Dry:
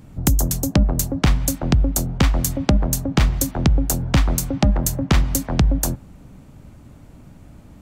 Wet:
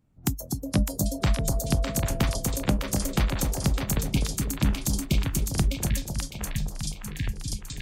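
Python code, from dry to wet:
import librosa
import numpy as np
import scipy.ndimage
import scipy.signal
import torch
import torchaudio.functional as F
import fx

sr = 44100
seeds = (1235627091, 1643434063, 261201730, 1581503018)

y = fx.spec_erase(x, sr, start_s=3.84, length_s=1.67, low_hz=430.0, high_hz=2100.0)
y = fx.noise_reduce_blind(y, sr, reduce_db=17)
y = fx.dmg_tone(y, sr, hz=670.0, level_db=-33.0, at=(1.01, 2.39), fade=0.02)
y = fx.echo_pitch(y, sr, ms=378, semitones=-5, count=2, db_per_echo=-6.0)
y = fx.echo_split(y, sr, split_hz=920.0, low_ms=252, high_ms=606, feedback_pct=52, wet_db=-4.0)
y = F.gain(torch.from_numpy(y), -7.5).numpy()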